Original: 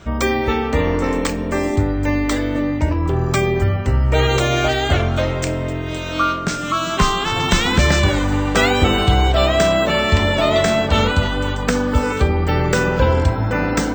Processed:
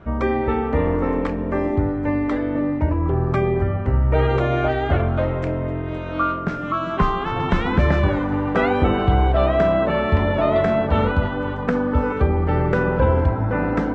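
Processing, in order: low-pass 1.5 kHz 12 dB/octave; hum notches 50/100 Hz; trim -1.5 dB

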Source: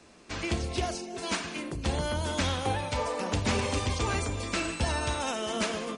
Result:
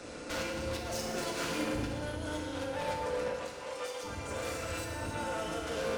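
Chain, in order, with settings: hum notches 50/100 Hz; compressor with a negative ratio -36 dBFS, ratio -0.5; AM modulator 190 Hz, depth 50%; small resonant body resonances 530/1400 Hz, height 12 dB, ringing for 45 ms; saturation -40 dBFS, distortion -5 dB; 3.29–5.67 s: three bands offset in time mids, highs, lows 50/740 ms, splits 360/3700 Hz; FDN reverb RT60 1.6 s, low-frequency decay 1.35×, high-frequency decay 0.95×, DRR -0.5 dB; trim +4.5 dB

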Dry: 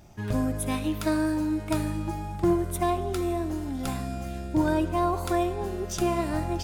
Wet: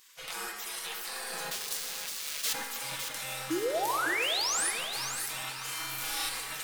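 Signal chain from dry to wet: 1.51–2.53 s: square wave that keeps the level; spectral gate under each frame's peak -30 dB weak; in parallel at +3 dB: compressor with a negative ratio -48 dBFS, ratio -0.5; 3.50–4.71 s: on the sum: painted sound rise 300–11000 Hz -32 dBFS; 5.61–6.29 s: flutter echo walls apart 6.4 m, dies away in 1.2 s; on a send at -3.5 dB: reverberation RT60 1.9 s, pre-delay 6 ms; on the sum: bit-crushed delay 557 ms, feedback 35%, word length 8-bit, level -7 dB

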